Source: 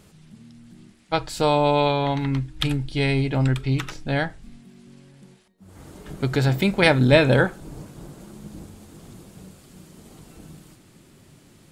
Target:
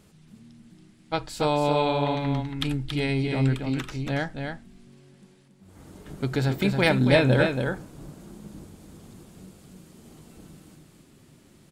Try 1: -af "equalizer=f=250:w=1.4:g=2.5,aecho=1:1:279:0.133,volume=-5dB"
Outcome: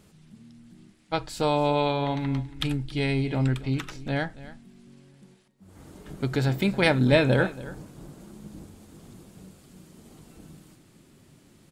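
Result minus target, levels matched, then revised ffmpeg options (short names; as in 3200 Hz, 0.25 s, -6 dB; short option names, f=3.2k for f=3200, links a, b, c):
echo-to-direct -12 dB
-af "equalizer=f=250:w=1.4:g=2.5,aecho=1:1:279:0.531,volume=-5dB"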